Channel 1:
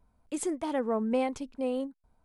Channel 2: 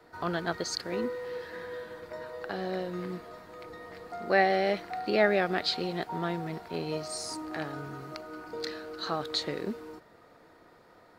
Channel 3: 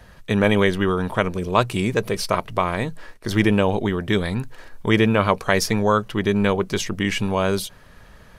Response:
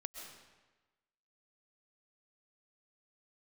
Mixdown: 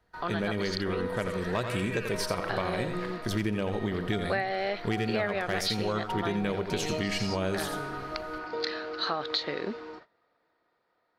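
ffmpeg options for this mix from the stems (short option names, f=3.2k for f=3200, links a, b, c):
-filter_complex "[0:a]aeval=exprs='val(0)*sin(2*PI*1500*n/s+1500*0.45/0.91*sin(2*PI*0.91*n/s))':c=same,adelay=800,volume=-12dB,asplit=2[a][b];[b]volume=-4.5dB[c];[1:a]lowpass=f=4.9k:w=0.5412,lowpass=f=4.9k:w=1.3066,lowshelf=f=380:g=-10.5,volume=3dB[d];[2:a]equalizer=f=1k:t=o:w=0.63:g=-6,volume=9.5dB,asoftclip=hard,volume=-9.5dB,volume=-11dB,asplit=3[e][f][g];[f]volume=-7.5dB[h];[g]volume=-7dB[i];[3:a]atrim=start_sample=2205[j];[h][j]afir=irnorm=-1:irlink=0[k];[c][i]amix=inputs=2:normalize=0,aecho=0:1:85:1[l];[a][d][e][k][l]amix=inputs=5:normalize=0,dynaudnorm=f=280:g=11:m=5.5dB,agate=range=-17dB:threshold=-49dB:ratio=16:detection=peak,acompressor=threshold=-26dB:ratio=6"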